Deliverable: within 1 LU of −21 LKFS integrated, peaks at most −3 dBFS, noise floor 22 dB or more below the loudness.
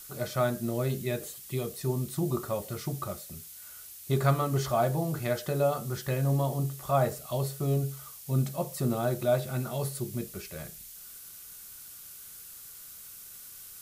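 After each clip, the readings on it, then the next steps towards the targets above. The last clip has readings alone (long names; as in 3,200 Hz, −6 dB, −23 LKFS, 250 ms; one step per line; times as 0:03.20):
background noise floor −47 dBFS; target noise floor −53 dBFS; integrated loudness −30.5 LKFS; sample peak −11.5 dBFS; target loudness −21.0 LKFS
→ noise reduction from a noise print 6 dB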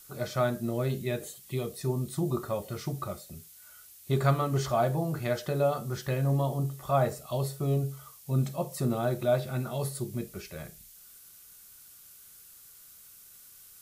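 background noise floor −53 dBFS; integrated loudness −30.5 LKFS; sample peak −11.5 dBFS; target loudness −21.0 LKFS
→ level +9.5 dB
brickwall limiter −3 dBFS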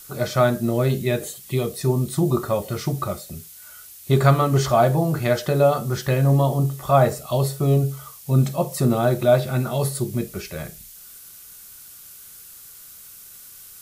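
integrated loudness −21.0 LKFS; sample peak −3.0 dBFS; background noise floor −44 dBFS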